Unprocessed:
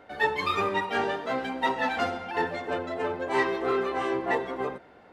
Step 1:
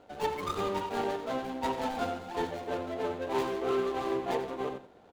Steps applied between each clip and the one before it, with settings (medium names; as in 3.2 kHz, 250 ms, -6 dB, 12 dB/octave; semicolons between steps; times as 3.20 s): median filter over 25 samples; on a send: delay 89 ms -11.5 dB; on the sum: trim -2.5 dB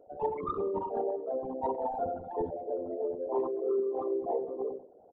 resonances exaggerated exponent 3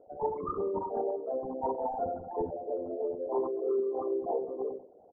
low-pass 1.4 kHz 24 dB/octave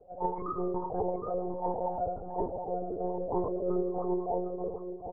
echo from a far wall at 130 m, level -8 dB; monotone LPC vocoder at 8 kHz 180 Hz